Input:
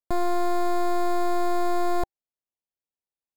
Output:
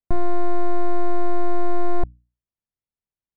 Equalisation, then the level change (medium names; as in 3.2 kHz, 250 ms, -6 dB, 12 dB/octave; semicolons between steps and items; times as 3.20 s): distance through air 110 m; tone controls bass +13 dB, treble -10 dB; hum notches 60/120/180/240/300 Hz; -2.0 dB